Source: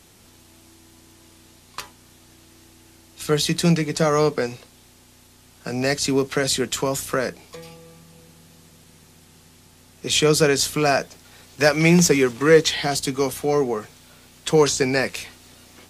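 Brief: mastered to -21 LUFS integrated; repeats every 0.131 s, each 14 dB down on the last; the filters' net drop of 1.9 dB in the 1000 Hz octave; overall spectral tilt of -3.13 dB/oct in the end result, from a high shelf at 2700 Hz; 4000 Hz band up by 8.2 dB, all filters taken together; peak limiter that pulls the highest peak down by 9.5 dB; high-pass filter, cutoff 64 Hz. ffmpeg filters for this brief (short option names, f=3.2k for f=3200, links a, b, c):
-af "highpass=64,equalizer=f=1k:t=o:g=-4,highshelf=f=2.7k:g=5,equalizer=f=4k:t=o:g=6,alimiter=limit=-9.5dB:level=0:latency=1,aecho=1:1:131|262:0.2|0.0399,volume=-0.5dB"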